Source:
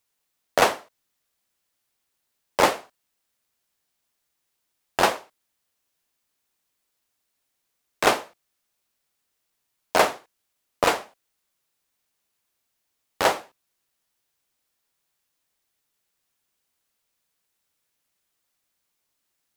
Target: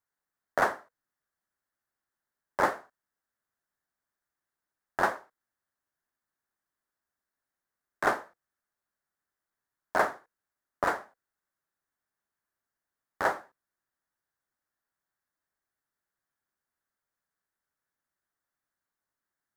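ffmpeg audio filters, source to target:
-af "highshelf=f=2.1k:t=q:w=3:g=-7.5,bandreject=f=480:w=12,volume=-8dB"

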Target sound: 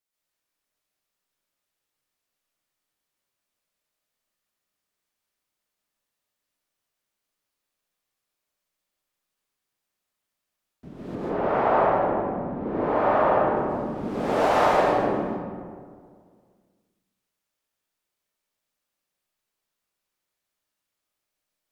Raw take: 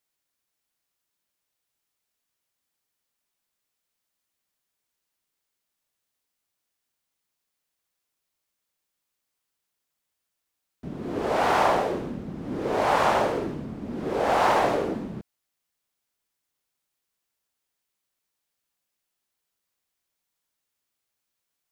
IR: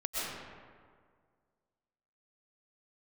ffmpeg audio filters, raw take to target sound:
-filter_complex "[0:a]asettb=1/sr,asplit=3[a][b][c];[a]atrim=end=11.154[d];[b]atrim=start=11.15:end=13.57,asetpts=PTS-STARTPTS,afade=t=in:d=0.004:c=qsin,afade=t=out:st=2.416:d=0.004:c=qsin,lowpass=1.6k[e];[c]atrim=start=13.566[f];[d][e]acrossfade=d=0.004:c1=hsin:c2=qsin[g];[g][f]acrossfade=d=0.004:c1=qsin:c2=hsin[h];[1:a]atrim=start_sample=2205,asetrate=41895,aresample=44100[i];[h][i]afir=irnorm=-1:irlink=0,volume=-5dB"

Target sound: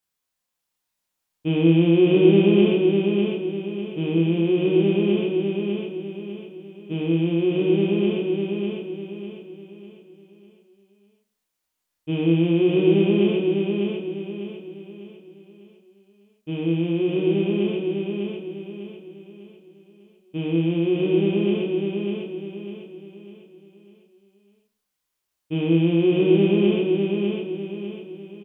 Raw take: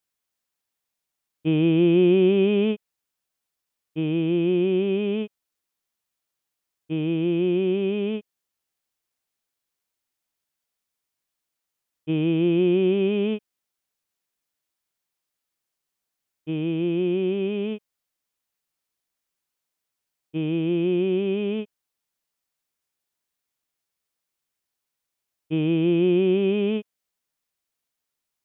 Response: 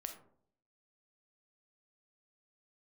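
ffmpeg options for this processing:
-filter_complex "[0:a]asplit=2[a][b];[b]adelay=30,volume=-4dB[c];[a][c]amix=inputs=2:normalize=0,aecho=1:1:600|1200|1800|2400|3000:0.631|0.246|0.096|0.0374|0.0146[d];[1:a]atrim=start_sample=2205,asetrate=66150,aresample=44100[e];[d][e]afir=irnorm=-1:irlink=0,volume=7dB"

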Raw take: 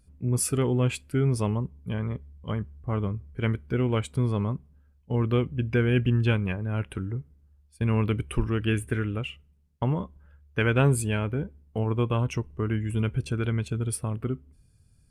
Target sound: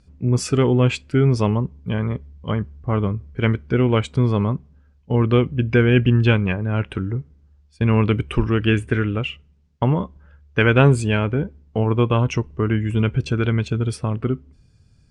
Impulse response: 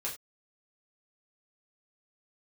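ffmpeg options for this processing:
-af "lowpass=f=6.6k:w=0.5412,lowpass=f=6.6k:w=1.3066,lowshelf=f=78:g=-5.5,volume=8.5dB"

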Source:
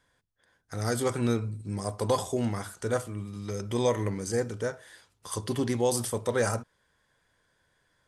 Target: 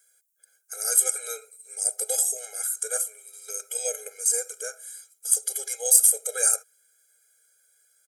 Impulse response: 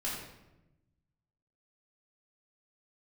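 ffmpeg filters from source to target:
-af "firequalizer=gain_entry='entry(330,0);entry(680,-5);entry(1000,1);entry(2100,7);entry(4800,0);entry(7000,14)':delay=0.05:min_phase=1,aexciter=amount=4.1:drive=4.3:freq=4.3k,afftfilt=real='re*eq(mod(floor(b*sr/1024/420),2),1)':imag='im*eq(mod(floor(b*sr/1024/420),2),1)':win_size=1024:overlap=0.75,volume=-4.5dB"

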